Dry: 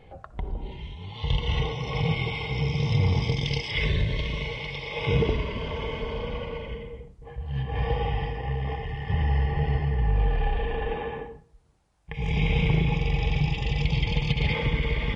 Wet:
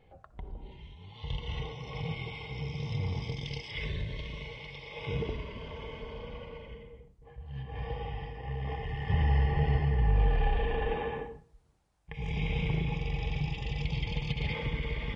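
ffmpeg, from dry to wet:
ffmpeg -i in.wav -af "volume=-2dB,afade=type=in:start_time=8.34:duration=0.72:silence=0.375837,afade=type=out:start_time=11.16:duration=1.19:silence=0.501187" out.wav

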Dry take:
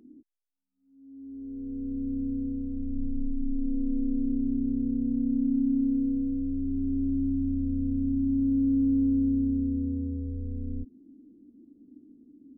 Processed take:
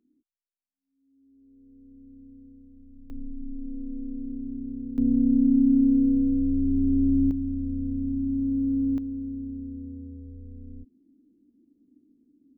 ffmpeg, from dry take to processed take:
ffmpeg -i in.wav -af "asetnsamples=nb_out_samples=441:pad=0,asendcmd='3.1 volume volume -6.5dB;4.98 volume volume 6dB;7.31 volume volume -1dB;8.98 volume volume -8.5dB',volume=-18dB" out.wav

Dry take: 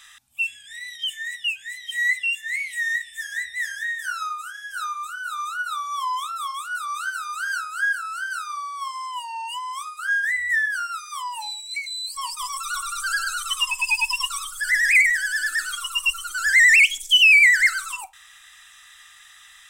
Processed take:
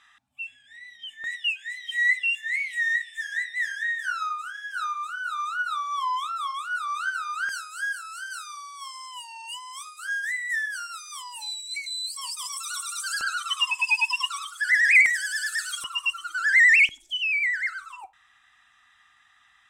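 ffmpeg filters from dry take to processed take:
ffmpeg -i in.wav -af "asetnsamples=nb_out_samples=441:pad=0,asendcmd='1.24 bandpass f 1700;7.49 bandpass f 6400;13.21 bandpass f 1700;15.06 bandpass f 5300;15.84 bandpass f 940;16.89 bandpass f 310',bandpass=frequency=400:width_type=q:width=0.5:csg=0" out.wav

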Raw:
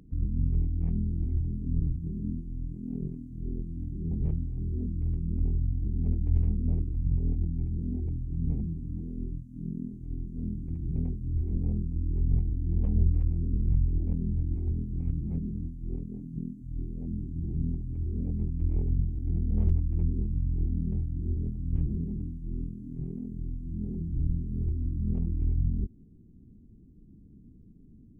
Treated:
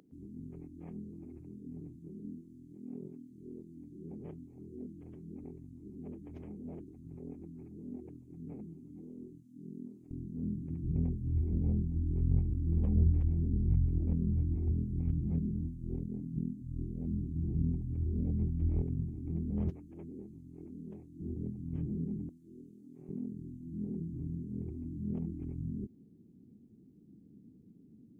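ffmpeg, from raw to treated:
ffmpeg -i in.wav -af "asetnsamples=nb_out_samples=441:pad=0,asendcmd='10.11 highpass f 120;10.84 highpass f 62;18.82 highpass f 130;19.7 highpass f 390;21.2 highpass f 160;22.29 highpass f 460;23.09 highpass f 180',highpass=360" out.wav

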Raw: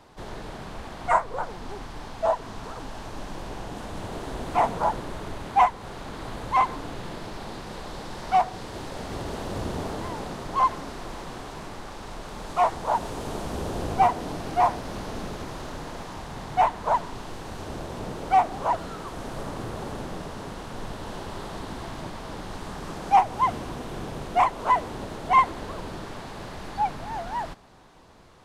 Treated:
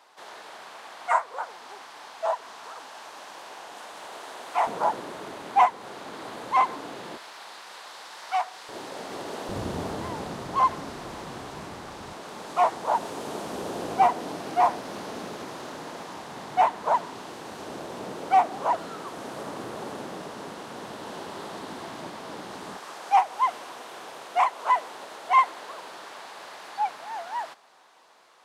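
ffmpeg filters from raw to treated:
ffmpeg -i in.wav -af "asetnsamples=nb_out_samples=441:pad=0,asendcmd='4.67 highpass f 280;7.17 highpass f 990;8.69 highpass f 300;9.49 highpass f 83;12.13 highpass f 230;22.77 highpass f 680',highpass=740" out.wav

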